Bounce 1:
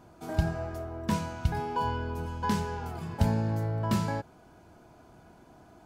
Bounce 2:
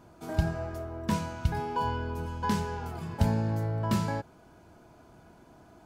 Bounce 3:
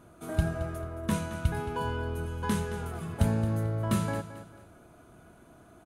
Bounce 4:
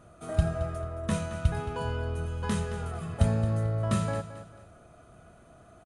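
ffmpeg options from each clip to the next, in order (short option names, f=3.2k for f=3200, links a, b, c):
-af "bandreject=f=750:w=20"
-af "superequalizer=9b=0.562:10b=1.41:14b=0.501:16b=2.51,aecho=1:1:221|442|663:0.224|0.0739|0.0244"
-af "aecho=1:1:1.6:0.44,aresample=22050,aresample=44100"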